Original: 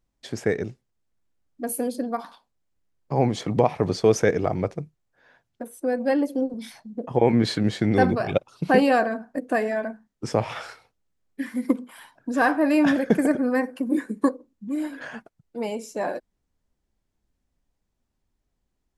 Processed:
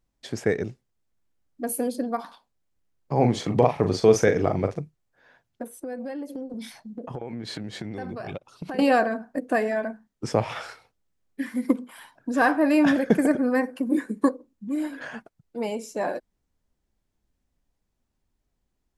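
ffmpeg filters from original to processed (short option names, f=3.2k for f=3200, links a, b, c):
-filter_complex "[0:a]asettb=1/sr,asplit=3[a][b][c];[a]atrim=end=3.144[d];[b]atrim=start=3.14:end=4.79,asetpts=PTS-STARTPTS,afade=t=in:d=0.004:c=qsin,afade=t=out:st=1.646:d=0.004:c=qsin,asplit=2[e][f];[f]adelay=41,volume=-7.5dB[g];[e][g]amix=inputs=2:normalize=0,atrim=end_sample=72765[h];[c]atrim=start=4.786[i];[d][h]acrossfade=d=0.004:c1=hsin:c2=qsin[j];[j][i]acrossfade=d=0.004:c1=qsin:c2=hsin,asettb=1/sr,asplit=3[k][l][m];[k]atrim=end=5.744[n];[l]atrim=start=5.74:end=8.79,asetpts=PTS-STARTPTS,afade=t=in:d=0.004:c=qsin,afade=t=out:st=3.046:d=0.004:c=qsin,acompressor=threshold=-30dB:ratio=10:attack=3.2:release=140:knee=1:detection=peak[o];[m]atrim=start=8.786[p];[n][o]acrossfade=d=0.004:c1=hsin:c2=qsin[q];[q][p]acrossfade=d=0.004:c1=qsin:c2=hsin"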